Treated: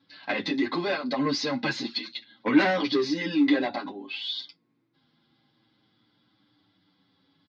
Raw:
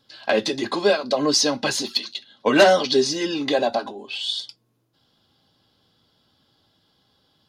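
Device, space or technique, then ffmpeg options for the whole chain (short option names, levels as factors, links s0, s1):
barber-pole flanger into a guitar amplifier: -filter_complex "[0:a]asplit=2[s0][s1];[s1]adelay=7.7,afreqshift=-0.28[s2];[s0][s2]amix=inputs=2:normalize=1,asoftclip=type=tanh:threshold=0.133,highpass=110,equalizer=f=170:t=q:w=4:g=5,equalizer=f=290:t=q:w=4:g=9,equalizer=f=430:t=q:w=4:g=-5,equalizer=f=630:t=q:w=4:g=-7,equalizer=f=2100:t=q:w=4:g=8,equalizer=f=3000:t=q:w=4:g=-5,lowpass=f=4300:w=0.5412,lowpass=f=4300:w=1.3066"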